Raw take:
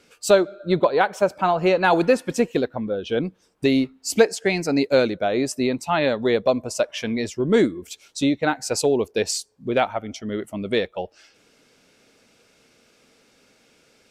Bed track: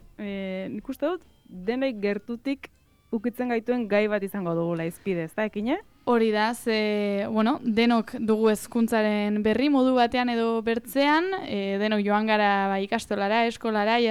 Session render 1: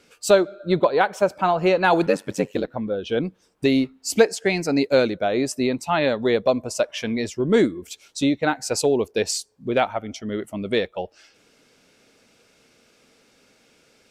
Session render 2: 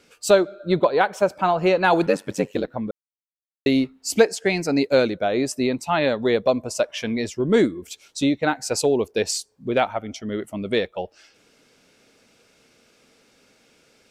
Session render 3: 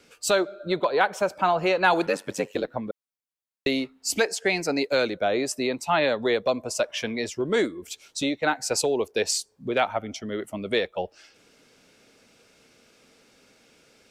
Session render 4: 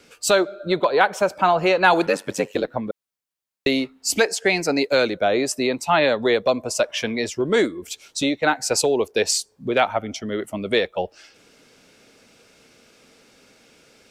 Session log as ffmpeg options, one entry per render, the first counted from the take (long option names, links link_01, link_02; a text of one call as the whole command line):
ffmpeg -i in.wav -filter_complex "[0:a]asettb=1/sr,asplit=3[link_01][link_02][link_03];[link_01]atrim=end=2.064[link_04];[link_02]atrim=start=2.06:end=2.68,asetpts=PTS-STARTPTS,afade=type=in:duration=0.004:curve=qsin,afade=type=out:start_time=0.616:duration=0.004:curve=qsin,aeval=exprs='val(0)*sin(2*PI*48*n/s)':channel_layout=same[link_05];[link_03]atrim=start=2.676[link_06];[link_04][link_05]acrossfade=duration=0.004:curve1=hsin:curve2=qsin[link_07];[link_07][link_06]acrossfade=duration=0.004:curve1=qsin:curve2=hsin" out.wav
ffmpeg -i in.wav -filter_complex "[0:a]asplit=3[link_01][link_02][link_03];[link_01]atrim=end=2.91,asetpts=PTS-STARTPTS,afade=type=out:start_time=2.906:duration=0.004:curve=hsin[link_04];[link_02]atrim=start=2.91:end=3.66,asetpts=PTS-STARTPTS,volume=0[link_05];[link_03]atrim=start=3.66,asetpts=PTS-STARTPTS,afade=type=in:duration=0.004:curve=hsin[link_06];[link_04][link_05][link_06]concat=n=3:v=0:a=1" out.wav
ffmpeg -i in.wav -filter_complex "[0:a]acrossover=split=370|940[link_01][link_02][link_03];[link_01]acompressor=threshold=-35dB:ratio=4[link_04];[link_02]alimiter=limit=-19dB:level=0:latency=1[link_05];[link_04][link_05][link_03]amix=inputs=3:normalize=0" out.wav
ffmpeg -i in.wav -af "volume=4.5dB" out.wav